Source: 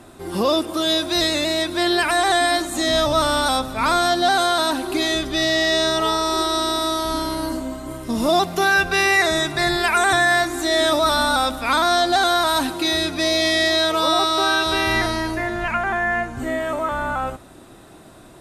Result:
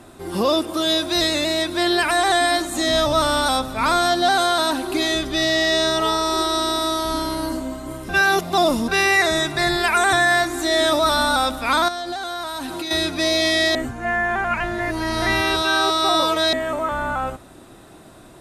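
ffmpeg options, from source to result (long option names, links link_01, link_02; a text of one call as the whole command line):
ffmpeg -i in.wav -filter_complex "[0:a]asettb=1/sr,asplit=3[link_01][link_02][link_03];[link_01]atrim=end=11.884[link_04];[link_02]atrim=start=11.88:end=12.91,asetpts=PTS-STARTPTS,afade=type=in:duration=0.004:curve=qsin,afade=type=out:start_time=1.026:duration=0.004:curve=qsin,acompressor=threshold=-24dB:ratio=12:attack=3.2:release=140:knee=1:detection=peak[link_05];[link_03]atrim=start=12.906[link_06];[link_04][link_05]acrossfade=duration=0.004:curve1=hsin:curve2=qsin[link_07];[link_07][link_06]acrossfade=duration=0.004:curve1=qsin:curve2=hsin,asplit=5[link_08][link_09][link_10][link_11][link_12];[link_08]atrim=end=8.092[link_13];[link_09]atrim=start=8.088:end=8.882,asetpts=PTS-STARTPTS,areverse[link_14];[link_10]atrim=start=8.878:end=13.752[link_15];[link_11]atrim=start=13.748:end=16.532,asetpts=PTS-STARTPTS,areverse[link_16];[link_12]atrim=start=16.528[link_17];[link_13][link_14]acrossfade=duration=0.004:curve1=hsin:curve2=hsin[link_18];[link_18][link_15]acrossfade=duration=0.004:curve1=hsin:curve2=hsin[link_19];[link_19][link_16]acrossfade=duration=0.004:curve1=hsin:curve2=hsin[link_20];[link_20][link_17]acrossfade=duration=0.004:curve1=hsin:curve2=hsin" out.wav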